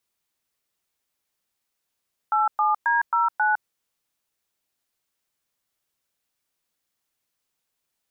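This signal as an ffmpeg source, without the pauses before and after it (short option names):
-f lavfi -i "aevalsrc='0.0944*clip(min(mod(t,0.269),0.158-mod(t,0.269))/0.002,0,1)*(eq(floor(t/0.269),0)*(sin(2*PI*852*mod(t,0.269))+sin(2*PI*1336*mod(t,0.269)))+eq(floor(t/0.269),1)*(sin(2*PI*852*mod(t,0.269))+sin(2*PI*1209*mod(t,0.269)))+eq(floor(t/0.269),2)*(sin(2*PI*941*mod(t,0.269))+sin(2*PI*1633*mod(t,0.269)))+eq(floor(t/0.269),3)*(sin(2*PI*941*mod(t,0.269))+sin(2*PI*1336*mod(t,0.269)))+eq(floor(t/0.269),4)*(sin(2*PI*852*mod(t,0.269))+sin(2*PI*1477*mod(t,0.269))))':d=1.345:s=44100"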